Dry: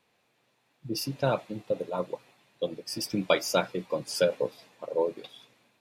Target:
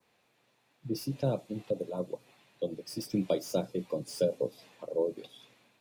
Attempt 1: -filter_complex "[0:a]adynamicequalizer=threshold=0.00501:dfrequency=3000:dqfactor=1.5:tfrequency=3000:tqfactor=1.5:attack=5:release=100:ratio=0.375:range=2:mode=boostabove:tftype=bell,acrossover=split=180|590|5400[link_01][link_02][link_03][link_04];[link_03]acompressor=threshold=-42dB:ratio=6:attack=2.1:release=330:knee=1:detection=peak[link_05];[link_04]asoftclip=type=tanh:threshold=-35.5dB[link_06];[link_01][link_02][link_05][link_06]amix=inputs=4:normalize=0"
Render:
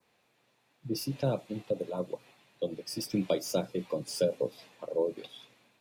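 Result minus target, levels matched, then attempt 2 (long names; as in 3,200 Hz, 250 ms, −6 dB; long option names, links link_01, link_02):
downward compressor: peak gain reduction −6 dB; soft clipping: distortion −6 dB
-filter_complex "[0:a]adynamicequalizer=threshold=0.00501:dfrequency=3000:dqfactor=1.5:tfrequency=3000:tqfactor=1.5:attack=5:release=100:ratio=0.375:range=2:mode=boostabove:tftype=bell,acrossover=split=180|590|5400[link_01][link_02][link_03][link_04];[link_03]acompressor=threshold=-49dB:ratio=6:attack=2.1:release=330:knee=1:detection=peak[link_05];[link_04]asoftclip=type=tanh:threshold=-42.5dB[link_06];[link_01][link_02][link_05][link_06]amix=inputs=4:normalize=0"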